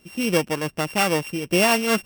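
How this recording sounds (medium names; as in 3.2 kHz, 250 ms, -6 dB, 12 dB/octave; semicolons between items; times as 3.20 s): a buzz of ramps at a fixed pitch in blocks of 16 samples; random flutter of the level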